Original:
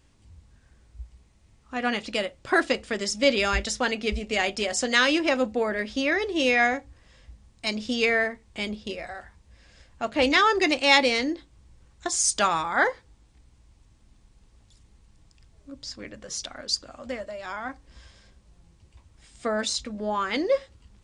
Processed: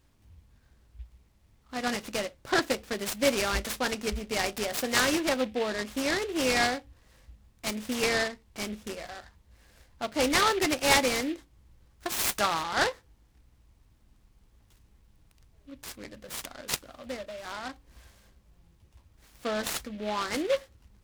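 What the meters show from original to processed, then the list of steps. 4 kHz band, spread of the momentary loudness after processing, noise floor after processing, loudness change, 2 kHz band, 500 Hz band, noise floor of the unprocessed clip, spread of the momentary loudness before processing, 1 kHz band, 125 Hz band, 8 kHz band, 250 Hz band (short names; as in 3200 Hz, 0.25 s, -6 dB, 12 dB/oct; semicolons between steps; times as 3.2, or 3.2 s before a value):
-3.5 dB, 15 LU, -64 dBFS, -4.0 dB, -5.5 dB, -4.0 dB, -60 dBFS, 16 LU, -4.0 dB, -1.0 dB, -2.5 dB, -4.0 dB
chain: noise-modulated delay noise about 2400 Hz, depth 0.064 ms; gain -4 dB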